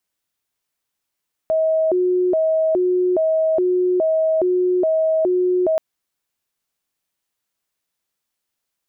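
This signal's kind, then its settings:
siren hi-lo 363–638 Hz 1.2 per second sine −14.5 dBFS 4.28 s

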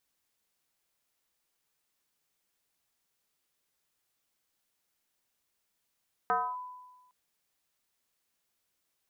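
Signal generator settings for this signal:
two-operator FM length 0.81 s, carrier 999 Hz, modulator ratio 0.27, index 1.7, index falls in 0.27 s linear, decay 1.21 s, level −23 dB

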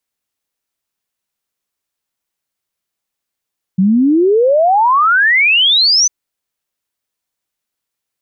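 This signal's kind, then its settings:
exponential sine sweep 180 Hz → 6,200 Hz 2.30 s −7.5 dBFS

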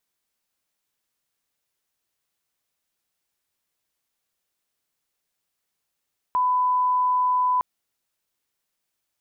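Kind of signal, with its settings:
line-up tone −18 dBFS 1.26 s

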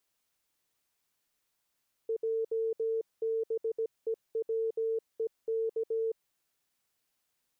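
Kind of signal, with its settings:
Morse code "JBEWEK" 17 words per minute 449 Hz −28 dBFS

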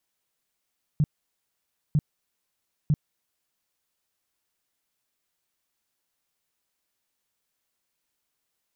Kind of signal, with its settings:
tone bursts 150 Hz, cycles 6, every 0.95 s, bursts 3, −17 dBFS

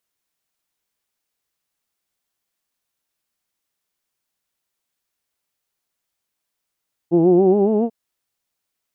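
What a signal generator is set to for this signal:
vowel from formants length 0.79 s, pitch 163 Hz, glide +6 semitones, vibrato 7.2 Hz, vibrato depth 0.85 semitones, F1 360 Hz, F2 770 Hz, F3 2,800 Hz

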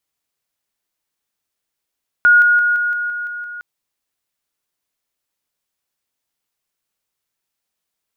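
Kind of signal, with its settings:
level staircase 1,440 Hz −6.5 dBFS, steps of −3 dB, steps 8, 0.17 s 0.00 s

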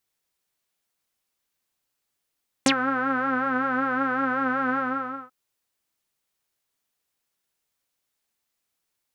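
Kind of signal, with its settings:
subtractive patch with vibrato C4, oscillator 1 saw, detune 29 cents, sub −26 dB, filter lowpass, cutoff 1,300 Hz, Q 9.8, filter envelope 3 octaves, filter decay 0.06 s, filter sustain 5%, attack 1.5 ms, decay 0.08 s, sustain −10 dB, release 0.54 s, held 2.10 s, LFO 5.3 Hz, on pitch 68 cents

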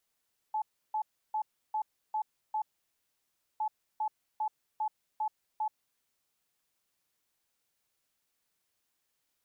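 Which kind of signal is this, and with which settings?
beeps in groups sine 862 Hz, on 0.08 s, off 0.32 s, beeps 6, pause 0.98 s, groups 2, −28.5 dBFS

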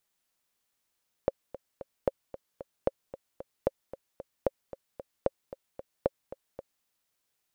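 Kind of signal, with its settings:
click track 226 BPM, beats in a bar 3, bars 7, 542 Hz, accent 15.5 dB −11 dBFS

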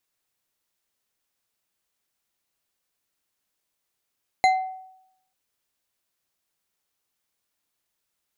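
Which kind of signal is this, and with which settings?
struck glass bar, lowest mode 753 Hz, decay 0.79 s, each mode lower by 6.5 dB, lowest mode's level −13 dB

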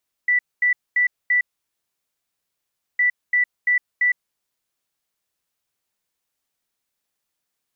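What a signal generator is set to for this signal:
beeps in groups sine 1,970 Hz, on 0.11 s, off 0.23 s, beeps 4, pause 1.58 s, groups 2, −14.5 dBFS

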